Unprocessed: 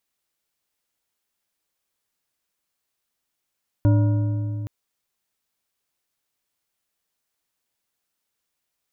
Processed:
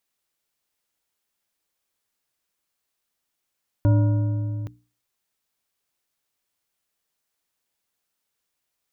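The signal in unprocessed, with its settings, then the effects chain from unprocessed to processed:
metal hit bar, length 0.82 s, lowest mode 107 Hz, decay 3.40 s, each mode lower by 7.5 dB, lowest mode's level -13 dB
hum notches 60/120/180/240/300 Hz

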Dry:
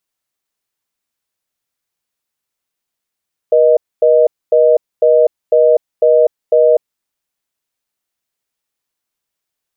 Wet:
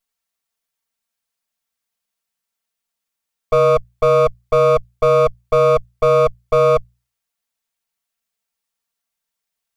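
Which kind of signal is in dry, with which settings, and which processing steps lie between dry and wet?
call progress tone reorder tone, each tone -9 dBFS 3.41 s
comb filter that takes the minimum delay 4.4 ms; peaking EQ 330 Hz -9 dB 0.72 oct; hum notches 60/120/180 Hz

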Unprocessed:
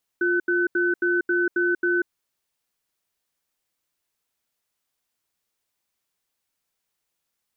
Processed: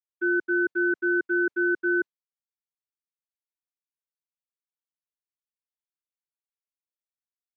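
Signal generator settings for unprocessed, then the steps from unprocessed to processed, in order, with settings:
cadence 351 Hz, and 1.51 kHz, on 0.19 s, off 0.08 s, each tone -21.5 dBFS 1.87 s
expander -20 dBFS; high-pass 120 Hz; distance through air 79 m

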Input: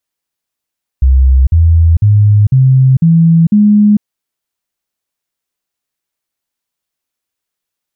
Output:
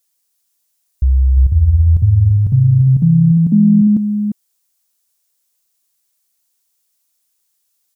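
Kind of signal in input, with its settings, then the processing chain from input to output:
stepped sine 65.6 Hz up, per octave 3, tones 6, 0.45 s, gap 0.05 s -3.5 dBFS
tone controls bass -4 dB, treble +14 dB; delay 349 ms -7.5 dB

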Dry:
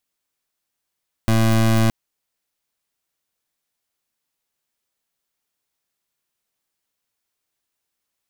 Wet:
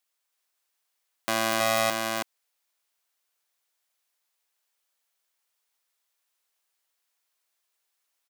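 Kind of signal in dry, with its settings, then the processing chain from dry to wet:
pulse 112 Hz, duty 25% -15.5 dBFS 0.62 s
high-pass 570 Hz 12 dB/octave; delay 323 ms -3.5 dB

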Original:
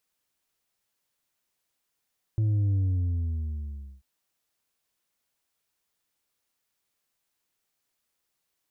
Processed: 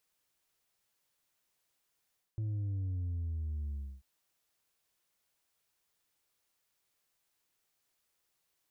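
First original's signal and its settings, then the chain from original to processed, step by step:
sub drop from 110 Hz, over 1.64 s, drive 4 dB, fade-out 1.28 s, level -22 dB
peaking EQ 240 Hz -6.5 dB 0.23 oct; reverse; compression 5:1, threshold -36 dBFS; reverse

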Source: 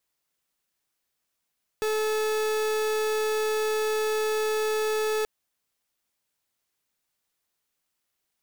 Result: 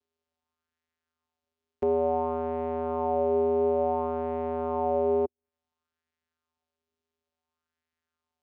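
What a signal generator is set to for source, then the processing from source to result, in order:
pulse 432 Hz, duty 42% -26 dBFS 3.43 s
low-pass that closes with the level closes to 460 Hz, closed at -32 dBFS; vocoder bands 4, square 81.5 Hz; sweeping bell 0.57 Hz 370–1900 Hz +10 dB

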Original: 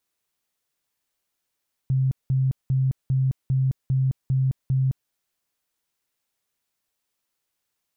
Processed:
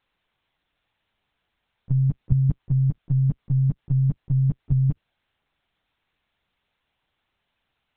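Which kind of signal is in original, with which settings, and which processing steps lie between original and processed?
tone bursts 132 Hz, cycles 28, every 0.40 s, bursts 8, -18 dBFS
FFT filter 120 Hz 0 dB, 180 Hz +8 dB, 320 Hz +10 dB; LPC vocoder at 8 kHz pitch kept

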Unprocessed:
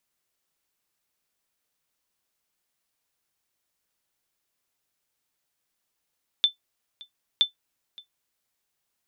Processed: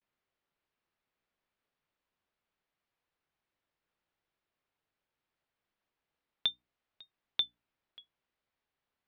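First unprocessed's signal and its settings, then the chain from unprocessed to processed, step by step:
sonar ping 3.53 kHz, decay 0.12 s, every 0.97 s, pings 2, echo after 0.57 s, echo -24 dB -10.5 dBFS
hum notches 60/120/180/240/300 Hz; vibrato 0.47 Hz 83 cents; distance through air 310 m

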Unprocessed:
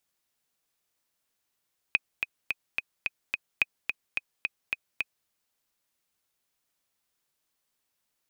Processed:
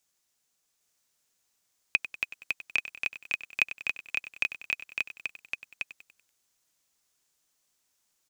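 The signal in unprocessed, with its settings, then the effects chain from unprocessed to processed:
metronome 216 bpm, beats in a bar 6, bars 2, 2.51 kHz, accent 6 dB -8.5 dBFS
peaking EQ 6.7 kHz +8 dB 0.92 oct; delay 806 ms -3.5 dB; bit-crushed delay 96 ms, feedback 55%, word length 8-bit, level -13.5 dB

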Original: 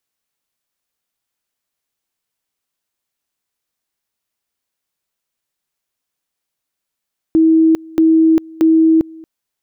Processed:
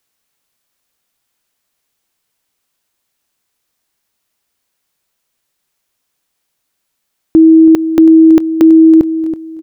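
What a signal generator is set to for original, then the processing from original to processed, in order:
two-level tone 322 Hz -7 dBFS, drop 25 dB, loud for 0.40 s, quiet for 0.23 s, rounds 3
feedback delay 327 ms, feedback 25%, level -14 dB; loudness maximiser +9.5 dB

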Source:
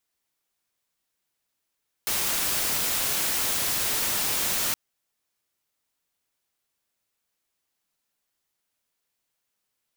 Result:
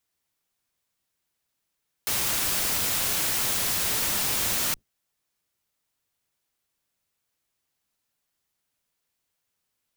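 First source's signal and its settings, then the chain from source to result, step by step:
noise white, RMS -26 dBFS 2.67 s
octave divider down 1 oct, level 0 dB

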